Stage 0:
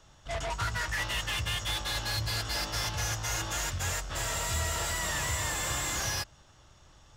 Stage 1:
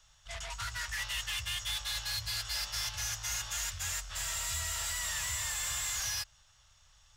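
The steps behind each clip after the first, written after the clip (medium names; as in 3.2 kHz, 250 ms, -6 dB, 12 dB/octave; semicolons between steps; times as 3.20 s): amplifier tone stack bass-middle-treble 10-0-10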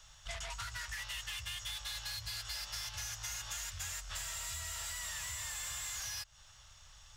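compression 12:1, threshold -44 dBFS, peak gain reduction 12.5 dB; trim +5.5 dB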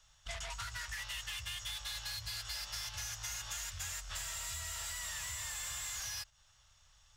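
gate -50 dBFS, range -8 dB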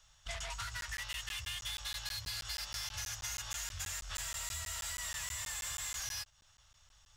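crackling interface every 0.16 s, samples 512, zero, from 0.81 s; trim +1 dB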